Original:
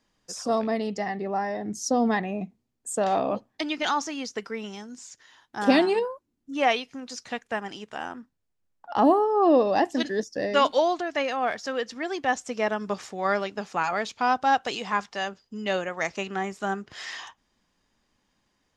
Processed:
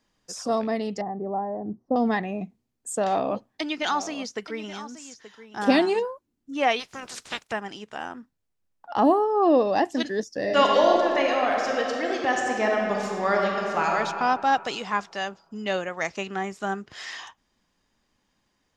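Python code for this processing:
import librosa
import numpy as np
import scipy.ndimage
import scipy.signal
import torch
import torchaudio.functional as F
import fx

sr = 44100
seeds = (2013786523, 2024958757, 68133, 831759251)

y = fx.lowpass(x, sr, hz=1000.0, slope=24, at=(1.01, 1.96))
y = fx.echo_single(y, sr, ms=878, db=-14.0, at=(3.03, 6.1))
y = fx.spec_clip(y, sr, under_db=25, at=(6.79, 7.51), fade=0.02)
y = fx.reverb_throw(y, sr, start_s=10.4, length_s=3.51, rt60_s=2.5, drr_db=-1.0)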